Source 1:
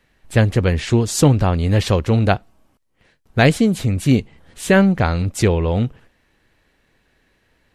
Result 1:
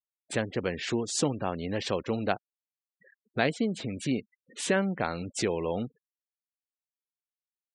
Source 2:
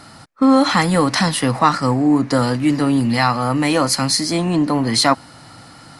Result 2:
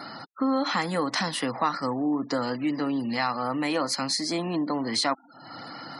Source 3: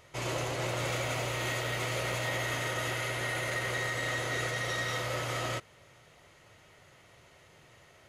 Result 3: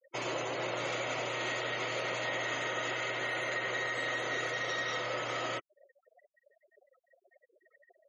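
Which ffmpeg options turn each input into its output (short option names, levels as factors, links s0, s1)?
-af "acompressor=threshold=0.01:ratio=2,highpass=230,lowpass=8000,afftfilt=real='re*gte(hypot(re,im),0.00501)':imag='im*gte(hypot(re,im),0.00501)':win_size=1024:overlap=0.75,volume=1.78"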